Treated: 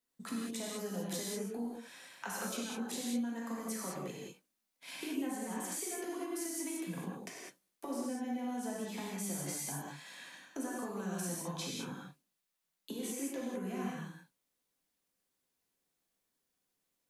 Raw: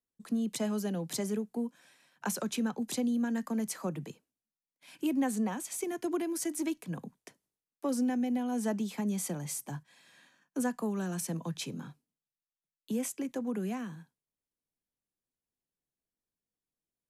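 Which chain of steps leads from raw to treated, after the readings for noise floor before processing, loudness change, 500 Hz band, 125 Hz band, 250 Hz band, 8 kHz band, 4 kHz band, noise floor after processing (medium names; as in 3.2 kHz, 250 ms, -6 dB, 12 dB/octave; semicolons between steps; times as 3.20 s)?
under -85 dBFS, -5.5 dB, -4.5 dB, -5.5 dB, -7.0 dB, -1.5 dB, -0.5 dB, -85 dBFS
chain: bass shelf 160 Hz -10.5 dB; compression 10:1, threshold -46 dBFS, peak gain reduction 17.5 dB; gated-style reverb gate 230 ms flat, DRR -5.5 dB; trim +4 dB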